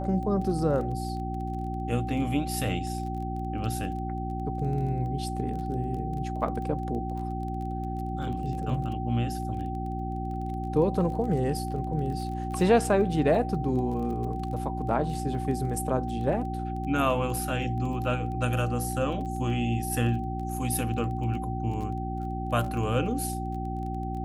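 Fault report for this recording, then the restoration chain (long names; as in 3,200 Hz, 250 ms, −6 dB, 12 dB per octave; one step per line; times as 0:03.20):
surface crackle 21 per second −36 dBFS
mains hum 60 Hz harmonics 6 −33 dBFS
whistle 770 Hz −35 dBFS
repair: click removal
notch filter 770 Hz, Q 30
hum removal 60 Hz, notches 6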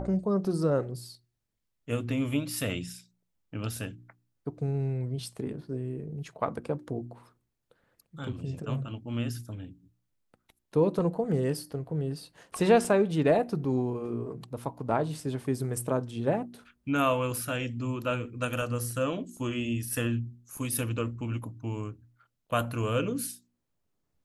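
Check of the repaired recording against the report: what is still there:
none of them is left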